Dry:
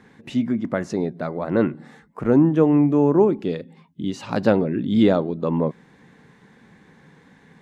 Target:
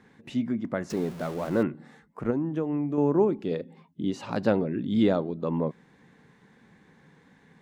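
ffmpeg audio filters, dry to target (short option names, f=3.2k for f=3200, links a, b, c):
-filter_complex "[0:a]asettb=1/sr,asplit=3[a][b][c];[a]atrim=end=0.904[d];[b]atrim=start=0.9:end=1.63,asetpts=PTS-STARTPTS,afade=t=in:d=0.004:c=qsin,afade=t=out:st=0.726:d=0.004:c=qsin,aeval=exprs='val(0)+0.5*0.0266*sgn(val(0))':c=same[e];[c]atrim=start=1.626[f];[d][e]acrossfade=d=0.004:c1=hsin:c2=qsin[g];[g][f]acrossfade=d=0.004:c1=qsin:c2=hsin,asettb=1/sr,asplit=3[h][i][j];[h]atrim=end=2.304[k];[i]atrim=start=2.3:end=2.98,asetpts=PTS-STARTPTS,afade=t=in:d=0.004:c=qsin,afade=t=out:st=0.676:d=0.004:c=qsin,acompressor=threshold=-19dB:ratio=6[l];[j]atrim=start=2.976[m];[k][l]acrossfade=d=0.004:c1=hsin:c2=qsin[n];[n][m]acrossfade=d=0.004:c1=qsin:c2=hsin,asettb=1/sr,asplit=3[o][p][q];[o]atrim=end=3.514[r];[p]atrim=start=3.51:end=4.32,asetpts=PTS-STARTPTS,afade=t=in:d=0.004:c=qsin,afade=t=out:st=0.806:d=0.004:c=qsin,equalizer=f=510:t=o:w=2.5:g=6[s];[q]atrim=start=4.316[t];[r][s]acrossfade=d=0.004:c1=hsin:c2=qsin[u];[u][t]acrossfade=d=0.004:c1=qsin:c2=hsin,volume=-6dB"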